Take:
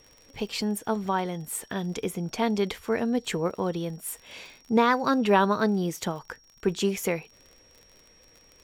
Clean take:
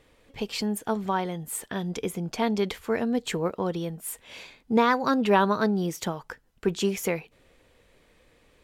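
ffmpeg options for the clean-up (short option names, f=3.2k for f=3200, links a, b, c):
-af "adeclick=t=4,bandreject=f=5.6k:w=30"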